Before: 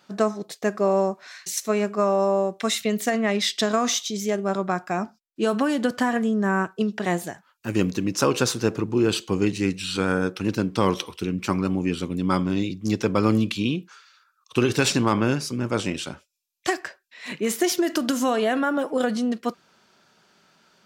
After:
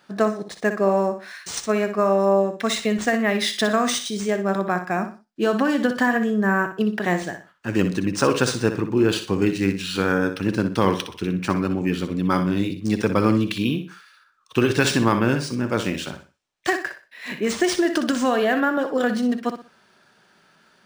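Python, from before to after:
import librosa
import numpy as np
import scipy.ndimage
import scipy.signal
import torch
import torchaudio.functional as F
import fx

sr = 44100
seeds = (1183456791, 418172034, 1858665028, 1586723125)

y = fx.peak_eq(x, sr, hz=1700.0, db=6.5, octaves=0.25)
y = fx.echo_feedback(y, sr, ms=61, feedback_pct=30, wet_db=-9.5)
y = np.interp(np.arange(len(y)), np.arange(len(y))[::3], y[::3])
y = F.gain(torch.from_numpy(y), 1.5).numpy()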